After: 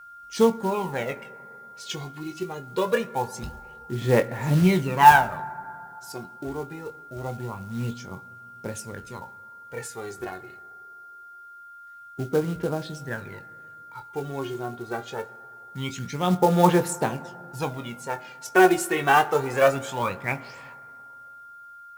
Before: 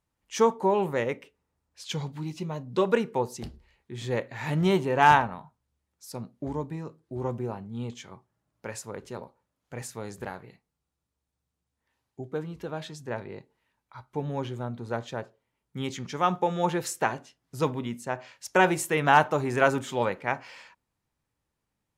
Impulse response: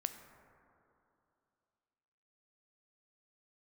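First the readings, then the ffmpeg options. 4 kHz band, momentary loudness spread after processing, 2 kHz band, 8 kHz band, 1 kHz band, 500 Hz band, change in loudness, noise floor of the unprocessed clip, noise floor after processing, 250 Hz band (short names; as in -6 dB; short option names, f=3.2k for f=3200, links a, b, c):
+2.5 dB, 23 LU, +3.0 dB, +3.0 dB, +4.0 dB, +3.0 dB, +3.5 dB, -84 dBFS, -46 dBFS, +4.5 dB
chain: -filter_complex "[0:a]aphaser=in_gain=1:out_gain=1:delay=2.8:decay=0.69:speed=0.24:type=sinusoidal,aeval=exprs='val(0)+0.00708*sin(2*PI*1400*n/s)':c=same,acrusher=bits=5:mode=log:mix=0:aa=0.000001,asplit=2[a][b];[1:a]atrim=start_sample=2205,adelay=22[c];[b][c]afir=irnorm=-1:irlink=0,volume=-8.5dB[d];[a][d]amix=inputs=2:normalize=0,volume=-1dB"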